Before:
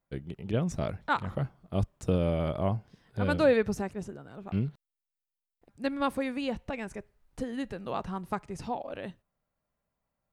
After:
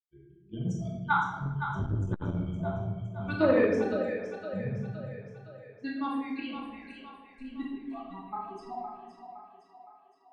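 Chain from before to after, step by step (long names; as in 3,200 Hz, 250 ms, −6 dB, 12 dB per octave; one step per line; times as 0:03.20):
spectral dynamics exaggerated over time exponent 3
high-shelf EQ 5,400 Hz −3 dB
output level in coarse steps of 10 dB
high-frequency loss of the air 100 metres
mains-hum notches 50/100/150/200 Hz
on a send: echo with a time of its own for lows and highs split 420 Hz, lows 142 ms, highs 514 ms, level −8.5 dB
on the sum: rectangular room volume 500 cubic metres, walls mixed, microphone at 2.5 metres
saturating transformer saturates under 440 Hz
level +4 dB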